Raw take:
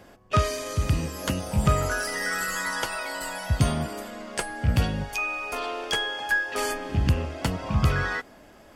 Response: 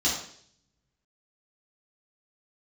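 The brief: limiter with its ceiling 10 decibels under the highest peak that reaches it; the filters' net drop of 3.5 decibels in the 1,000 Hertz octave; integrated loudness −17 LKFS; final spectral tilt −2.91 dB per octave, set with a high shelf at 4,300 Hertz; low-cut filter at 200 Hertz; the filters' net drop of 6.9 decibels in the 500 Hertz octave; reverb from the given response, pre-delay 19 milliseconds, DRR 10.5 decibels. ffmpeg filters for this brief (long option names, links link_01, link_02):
-filter_complex "[0:a]highpass=200,equalizer=frequency=500:width_type=o:gain=-8,equalizer=frequency=1000:width_type=o:gain=-3.5,highshelf=frequency=4300:gain=9,alimiter=limit=-19.5dB:level=0:latency=1,asplit=2[link_01][link_02];[1:a]atrim=start_sample=2205,adelay=19[link_03];[link_02][link_03]afir=irnorm=-1:irlink=0,volume=-21dB[link_04];[link_01][link_04]amix=inputs=2:normalize=0,volume=12dB"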